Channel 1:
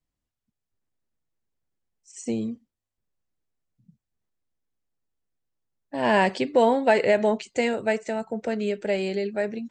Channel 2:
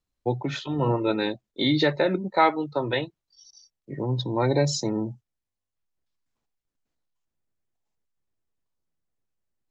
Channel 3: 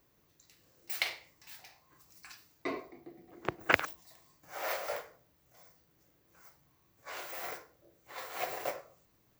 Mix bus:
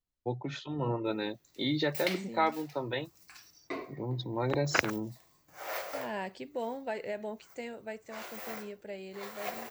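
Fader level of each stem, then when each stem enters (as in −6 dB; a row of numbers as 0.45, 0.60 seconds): −17.0, −8.5, −1.5 decibels; 0.00, 0.00, 1.05 seconds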